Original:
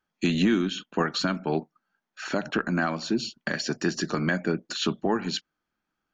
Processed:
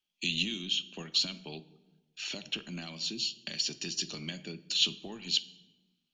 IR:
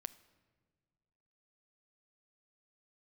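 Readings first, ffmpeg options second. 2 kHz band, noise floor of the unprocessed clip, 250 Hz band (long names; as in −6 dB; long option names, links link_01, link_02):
−10.0 dB, −84 dBFS, −16.0 dB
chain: -filter_complex "[0:a]acrossover=split=180|3000[link_01][link_02][link_03];[link_02]acompressor=threshold=-31dB:ratio=3[link_04];[link_01][link_04][link_03]amix=inputs=3:normalize=0,highshelf=frequency=2100:width_type=q:width=3:gain=11.5[link_05];[1:a]atrim=start_sample=2205,asetrate=61740,aresample=44100[link_06];[link_05][link_06]afir=irnorm=-1:irlink=0,volume=-5.5dB"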